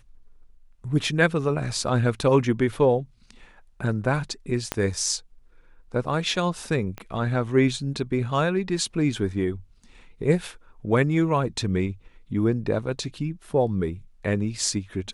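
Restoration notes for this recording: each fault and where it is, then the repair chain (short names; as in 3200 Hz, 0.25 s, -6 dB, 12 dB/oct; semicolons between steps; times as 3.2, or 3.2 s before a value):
4.72 pop -9 dBFS
6.98 pop -20 dBFS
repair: de-click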